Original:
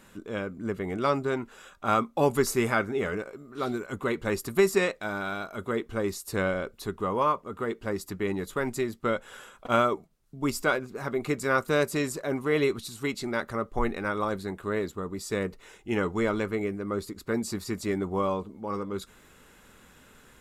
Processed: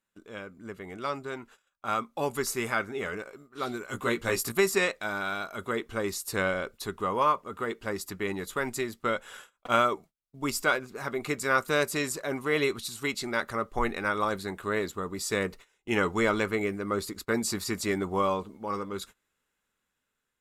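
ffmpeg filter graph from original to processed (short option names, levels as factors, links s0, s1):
-filter_complex "[0:a]asettb=1/sr,asplit=3[s0][s1][s2];[s0]atrim=end=3.864[s3];[s1]atrim=start=3.86:end=4.52,asetpts=PTS-STARTPTS,afade=t=in:d=0.004:c=qsin,afade=t=out:st=0.656:d=0.004:c=qsin,bass=f=250:g=1,treble=f=4000:g=3,asplit=2[s4][s5];[s5]adelay=17,volume=0.708[s6];[s4][s6]amix=inputs=2:normalize=0,atrim=end_sample=29106[s7];[s2]atrim=start=4.516[s8];[s3][s7]acrossfade=d=0.004:c1=hsin:c2=qsin[s9];[s9][s8]acrossfade=d=0.004:c1=qsin:c2=hsin,agate=range=0.0631:threshold=0.00562:ratio=16:detection=peak,tiltshelf=f=760:g=-4,dynaudnorm=f=850:g=7:m=3.76,volume=0.422"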